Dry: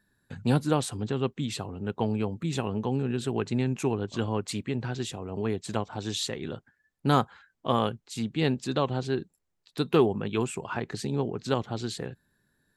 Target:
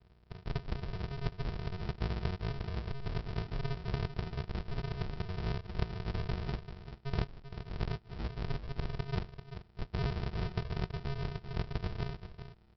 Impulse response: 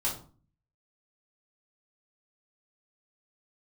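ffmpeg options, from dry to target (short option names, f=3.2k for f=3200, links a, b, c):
-af "lowshelf=f=90:g=-8,areverse,acompressor=threshold=-38dB:ratio=6,areverse,aeval=exprs='val(0)+0.000398*(sin(2*PI*60*n/s)+sin(2*PI*2*60*n/s)/2+sin(2*PI*3*60*n/s)/3+sin(2*PI*4*60*n/s)/4+sin(2*PI*5*60*n/s)/5)':c=same,aresample=11025,acrusher=samples=40:mix=1:aa=0.000001,aresample=44100,aecho=1:1:390:0.299,volume=5.5dB"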